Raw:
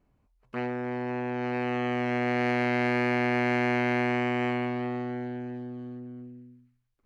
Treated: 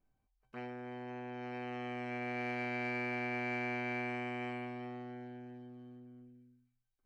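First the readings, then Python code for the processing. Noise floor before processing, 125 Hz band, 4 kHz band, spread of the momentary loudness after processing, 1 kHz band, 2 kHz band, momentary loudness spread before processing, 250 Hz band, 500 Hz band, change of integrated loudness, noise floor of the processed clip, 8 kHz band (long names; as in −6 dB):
−70 dBFS, −13.0 dB, −12.0 dB, 16 LU, −11.5 dB, −9.5 dB, 14 LU, −13.5 dB, −13.0 dB, −11.5 dB, −81 dBFS, can't be measured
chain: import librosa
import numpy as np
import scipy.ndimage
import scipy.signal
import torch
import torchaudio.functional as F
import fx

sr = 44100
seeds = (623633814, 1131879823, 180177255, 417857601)

y = fx.comb_fb(x, sr, f0_hz=780.0, decay_s=0.27, harmonics='all', damping=0.0, mix_pct=90)
y = y * 10.0 ** (5.5 / 20.0)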